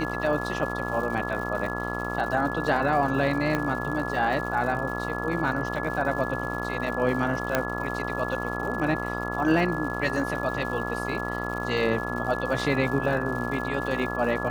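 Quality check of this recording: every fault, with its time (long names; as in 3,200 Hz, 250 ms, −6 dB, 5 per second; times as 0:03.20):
mains buzz 60 Hz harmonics 23 −32 dBFS
surface crackle 210 per second −35 dBFS
whistle 1,700 Hz −33 dBFS
0:03.55: click −13 dBFS
0:07.55: click −8 dBFS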